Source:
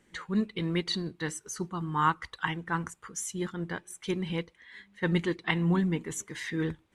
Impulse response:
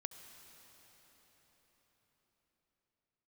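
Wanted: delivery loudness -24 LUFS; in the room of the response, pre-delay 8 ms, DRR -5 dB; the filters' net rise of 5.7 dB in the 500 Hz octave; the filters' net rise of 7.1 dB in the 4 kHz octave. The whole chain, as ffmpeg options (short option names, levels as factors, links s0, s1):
-filter_complex "[0:a]equalizer=f=500:t=o:g=8,equalizer=f=4000:t=o:g=8.5,asplit=2[s0][s1];[1:a]atrim=start_sample=2205,adelay=8[s2];[s1][s2]afir=irnorm=-1:irlink=0,volume=2.51[s3];[s0][s3]amix=inputs=2:normalize=0,volume=0.891"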